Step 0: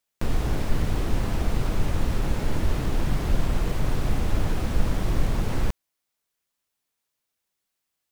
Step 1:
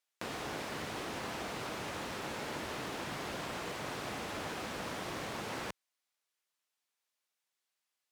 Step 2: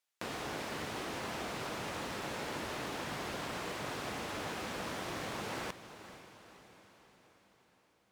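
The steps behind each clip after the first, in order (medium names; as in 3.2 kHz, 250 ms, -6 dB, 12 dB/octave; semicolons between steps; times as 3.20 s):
frequency weighting A; trim -4 dB
echo that smears into a reverb 495 ms, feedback 54%, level -13 dB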